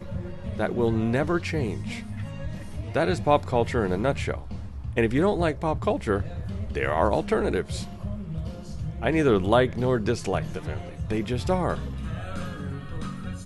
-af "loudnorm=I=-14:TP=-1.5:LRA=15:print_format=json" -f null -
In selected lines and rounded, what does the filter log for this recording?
"input_i" : "-27.4",
"input_tp" : "-6.8",
"input_lra" : "5.7",
"input_thresh" : "-37.4",